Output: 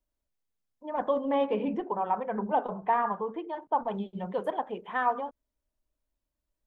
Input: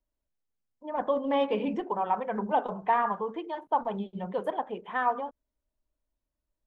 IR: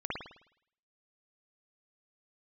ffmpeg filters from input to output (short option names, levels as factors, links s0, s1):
-filter_complex "[0:a]asettb=1/sr,asplit=3[s0][s1][s2];[s0]atrim=end=1.244[s3];[s1]atrim=start=1.24:end=3.88,asetpts=PTS-STARTPTS,afade=t=in:d=0.004:c=qsin,afade=t=out:st=2.636:d=0.004:c=qsin,highshelf=f=3100:g=-11[s4];[s2]atrim=start=3.876[s5];[s3][s4]acrossfade=d=0.004:c1=hsin:c2=qsin[s6];[s6][s5]acrossfade=d=0.004:c1=qsin:c2=hsin"